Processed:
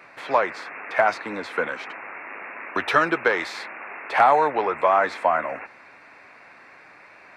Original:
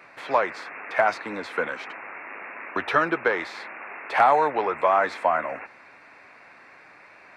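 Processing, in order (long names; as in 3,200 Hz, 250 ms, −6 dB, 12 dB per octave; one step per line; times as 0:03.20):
0:02.75–0:03.66: high-shelf EQ 4,100 Hz +9 dB
level +1.5 dB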